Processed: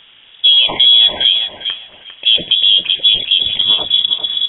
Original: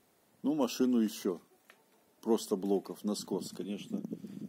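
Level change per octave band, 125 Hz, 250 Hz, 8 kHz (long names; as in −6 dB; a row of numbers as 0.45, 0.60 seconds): can't be measured, −6.5 dB, below −35 dB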